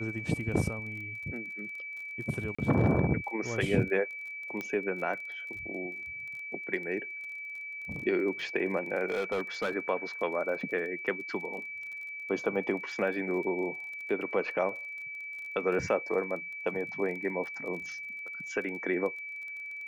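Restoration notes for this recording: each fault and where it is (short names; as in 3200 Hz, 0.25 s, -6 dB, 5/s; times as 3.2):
crackle 27/s -40 dBFS
tone 2300 Hz -38 dBFS
2.55–2.58 gap 35 ms
4.61 pop -22 dBFS
9.1–9.71 clipped -26.5 dBFS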